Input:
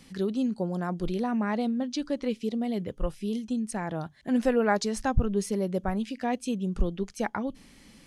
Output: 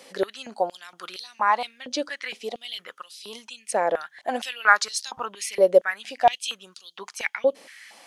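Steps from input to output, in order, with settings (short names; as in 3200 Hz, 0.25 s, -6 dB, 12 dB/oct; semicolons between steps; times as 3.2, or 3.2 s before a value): stepped high-pass 4.3 Hz 540–4200 Hz; gain +6.5 dB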